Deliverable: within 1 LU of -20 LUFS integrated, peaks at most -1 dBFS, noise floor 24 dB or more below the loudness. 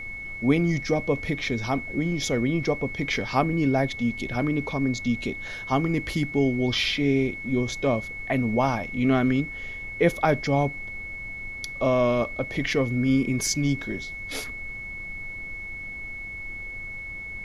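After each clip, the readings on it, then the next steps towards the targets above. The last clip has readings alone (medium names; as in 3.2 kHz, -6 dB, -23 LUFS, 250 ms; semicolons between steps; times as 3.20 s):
steady tone 2.2 kHz; tone level -34 dBFS; noise floor -36 dBFS; noise floor target -50 dBFS; loudness -26.0 LUFS; peak level -7.5 dBFS; loudness target -20.0 LUFS
-> band-stop 2.2 kHz, Q 30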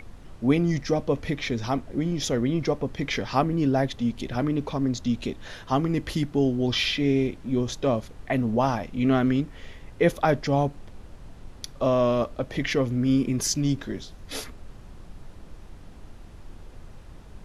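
steady tone not found; noise floor -45 dBFS; noise floor target -50 dBFS
-> noise print and reduce 6 dB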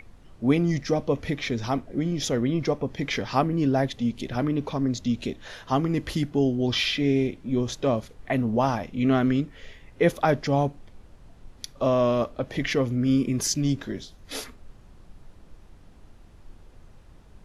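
noise floor -51 dBFS; loudness -25.5 LUFS; peak level -8.5 dBFS; loudness target -20.0 LUFS
-> trim +5.5 dB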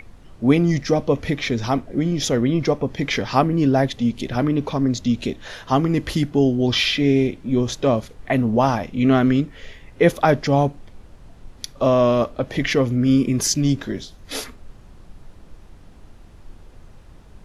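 loudness -20.0 LUFS; peak level -3.0 dBFS; noise floor -46 dBFS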